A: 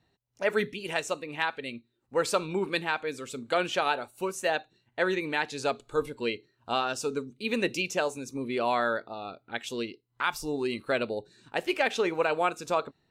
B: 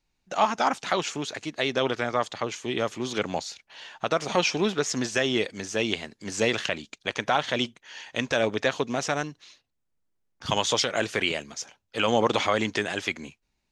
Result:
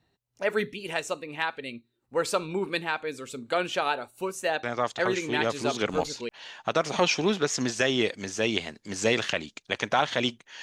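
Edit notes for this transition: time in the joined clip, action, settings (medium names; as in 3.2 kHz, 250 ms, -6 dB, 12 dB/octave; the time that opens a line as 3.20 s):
A
5.46 s: go over to B from 2.82 s, crossfade 1.66 s logarithmic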